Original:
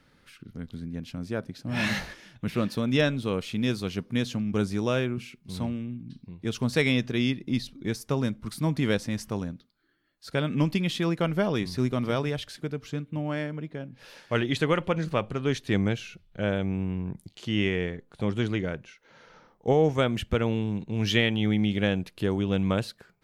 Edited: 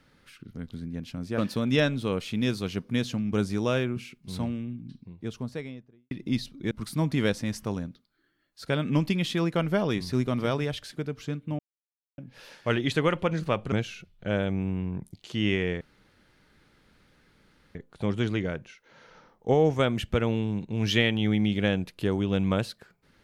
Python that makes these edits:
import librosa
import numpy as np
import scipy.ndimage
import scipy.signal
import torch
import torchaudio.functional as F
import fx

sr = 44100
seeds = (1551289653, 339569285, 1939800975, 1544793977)

y = fx.studio_fade_out(x, sr, start_s=5.86, length_s=1.46)
y = fx.edit(y, sr, fx.cut(start_s=1.38, length_s=1.21),
    fx.cut(start_s=7.92, length_s=0.44),
    fx.silence(start_s=13.24, length_s=0.59),
    fx.cut(start_s=15.37, length_s=0.48),
    fx.insert_room_tone(at_s=17.94, length_s=1.94), tone=tone)